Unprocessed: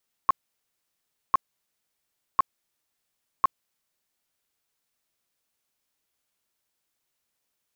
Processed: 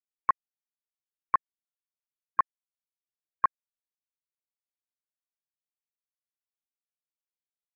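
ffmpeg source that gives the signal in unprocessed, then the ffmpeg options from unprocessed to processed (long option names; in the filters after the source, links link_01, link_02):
-f lavfi -i "aevalsrc='0.211*sin(2*PI*1080*mod(t,1.05))*lt(mod(t,1.05),17/1080)':duration=4.2:sample_rate=44100"
-af "alimiter=limit=-18dB:level=0:latency=1,afftfilt=real='re*gte(hypot(re,im),0.00562)':imag='im*gte(hypot(re,im),0.00562)':win_size=1024:overlap=0.75,lowpass=frequency=1800:width_type=q:width=3.4"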